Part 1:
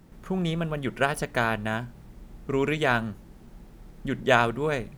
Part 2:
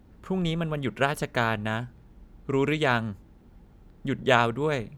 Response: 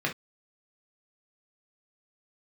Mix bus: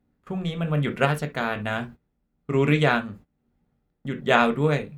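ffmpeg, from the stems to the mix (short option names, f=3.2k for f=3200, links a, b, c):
-filter_complex "[0:a]volume=-18.5dB[a];[1:a]volume=-1,volume=-0.5dB,asplit=2[b][c];[c]volume=-8.5dB[d];[2:a]atrim=start_sample=2205[e];[d][e]afir=irnorm=-1:irlink=0[f];[a][b][f]amix=inputs=3:normalize=0,agate=range=-19dB:threshold=-40dB:ratio=16:detection=peak,tremolo=f=1.1:d=0.49"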